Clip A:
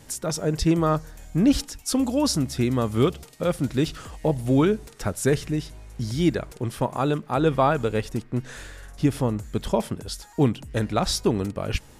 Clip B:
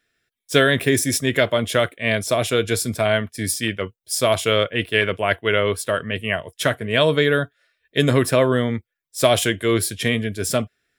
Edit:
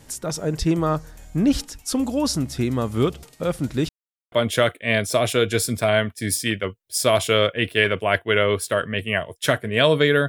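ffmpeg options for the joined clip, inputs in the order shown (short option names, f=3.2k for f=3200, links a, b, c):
-filter_complex "[0:a]apad=whole_dur=10.28,atrim=end=10.28,asplit=2[a][b];[a]atrim=end=3.89,asetpts=PTS-STARTPTS,afade=t=out:st=3.886:d=0.004:c=hsin[c];[b]atrim=start=3.89:end=4.32,asetpts=PTS-STARTPTS,volume=0[d];[1:a]atrim=start=1.49:end=7.45,asetpts=PTS-STARTPTS,afade=t=in:d=0.004:c=hsin[e];[c][d][e]concat=n=3:v=0:a=1"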